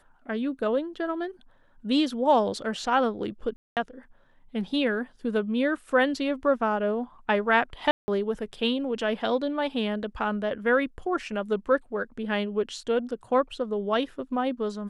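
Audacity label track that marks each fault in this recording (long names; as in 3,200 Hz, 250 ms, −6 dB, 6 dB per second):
3.560000	3.770000	drop-out 208 ms
7.910000	8.080000	drop-out 170 ms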